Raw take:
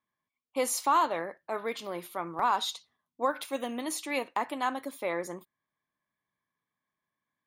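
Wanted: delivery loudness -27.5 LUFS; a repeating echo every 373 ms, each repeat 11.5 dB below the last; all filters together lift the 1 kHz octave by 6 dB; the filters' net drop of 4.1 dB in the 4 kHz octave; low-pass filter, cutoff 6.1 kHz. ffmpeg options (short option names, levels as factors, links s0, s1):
-af "lowpass=6100,equalizer=f=1000:t=o:g=7,equalizer=f=4000:t=o:g=-4.5,aecho=1:1:373|746|1119:0.266|0.0718|0.0194"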